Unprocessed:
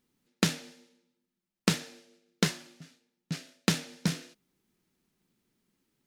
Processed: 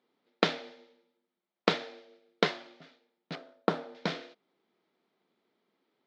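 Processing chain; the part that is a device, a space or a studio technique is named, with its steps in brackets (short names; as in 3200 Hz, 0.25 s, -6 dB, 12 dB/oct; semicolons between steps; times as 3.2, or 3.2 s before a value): 3.35–3.95 band shelf 3700 Hz -13 dB 2.3 oct; phone earpiece (speaker cabinet 410–3600 Hz, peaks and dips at 450 Hz +3 dB, 680 Hz +5 dB, 1700 Hz -5 dB, 2700 Hz -8 dB); gain +6 dB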